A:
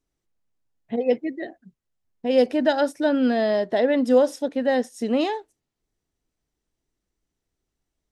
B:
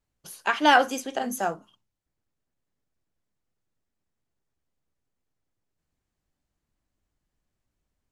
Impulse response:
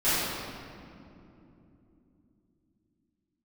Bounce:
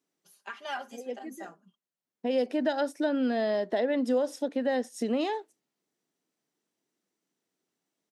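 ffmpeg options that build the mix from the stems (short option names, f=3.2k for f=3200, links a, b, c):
-filter_complex "[0:a]volume=0.5dB[a];[1:a]aecho=1:1:5:0.97,volume=-20dB,asplit=2[b][c];[c]apad=whole_len=357859[d];[a][d]sidechaincompress=threshold=-51dB:ratio=6:attack=5.4:release=961[e];[e][b]amix=inputs=2:normalize=0,highpass=f=180:w=0.5412,highpass=f=180:w=1.3066,acompressor=threshold=-28dB:ratio=2.5"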